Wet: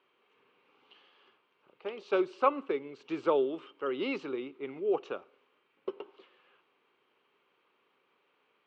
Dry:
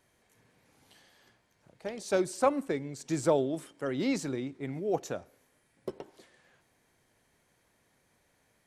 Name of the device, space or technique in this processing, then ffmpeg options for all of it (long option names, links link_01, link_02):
phone earpiece: -af "highpass=390,equalizer=frequency=400:width_type=q:width=4:gain=7,equalizer=frequency=660:width_type=q:width=4:gain=-9,equalizer=frequency=1200:width_type=q:width=4:gain=9,equalizer=frequency=1800:width_type=q:width=4:gain=-9,equalizer=frequency=2800:width_type=q:width=4:gain=9,lowpass=frequency=3300:width=0.5412,lowpass=frequency=3300:width=1.3066"